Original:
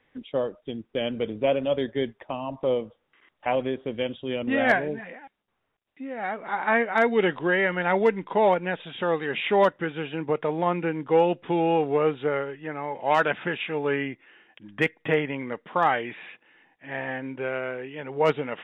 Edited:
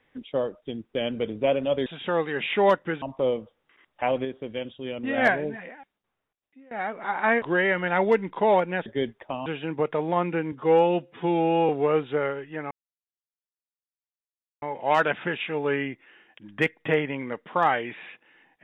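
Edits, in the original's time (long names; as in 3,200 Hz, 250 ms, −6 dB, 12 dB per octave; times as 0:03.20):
0:01.86–0:02.46: swap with 0:08.80–0:09.96
0:03.69–0:04.62: clip gain −4 dB
0:05.15–0:06.15: fade out, to −21.5 dB
0:06.86–0:07.36: remove
0:11.02–0:11.80: time-stretch 1.5×
0:12.82: splice in silence 1.91 s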